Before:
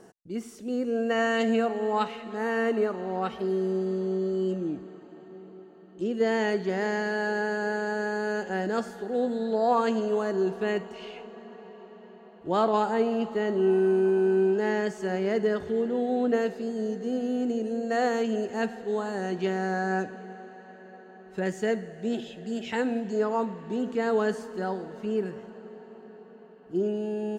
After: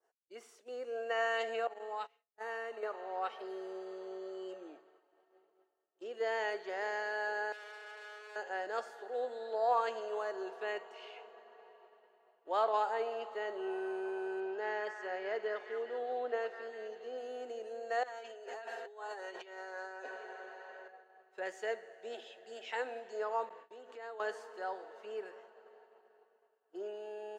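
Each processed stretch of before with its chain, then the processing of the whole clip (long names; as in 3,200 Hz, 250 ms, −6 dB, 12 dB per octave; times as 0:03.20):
0:01.67–0:02.83: noise gate −30 dBFS, range −26 dB + bass and treble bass +5 dB, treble +4 dB + downward compressor 4 to 1, threshold −28 dBFS
0:07.52–0:08.36: high-pass filter 250 Hz + tube saturation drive 40 dB, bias 0.75
0:14.40–0:17.18: high-frequency loss of the air 83 metres + echo through a band-pass that steps 202 ms, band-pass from 1,400 Hz, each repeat 0.7 octaves, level −4.5 dB
0:18.03–0:20.88: low-shelf EQ 190 Hz −8.5 dB + comb filter 7.4 ms, depth 72% + compressor whose output falls as the input rises −36 dBFS
0:23.49–0:24.20: downward compressor 16 to 1, threshold −32 dBFS + noise gate with hold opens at −30 dBFS, closes at −34 dBFS
whole clip: high-pass filter 510 Hz 24 dB per octave; downward expander −47 dBFS; high-shelf EQ 5,700 Hz −9 dB; level −5.5 dB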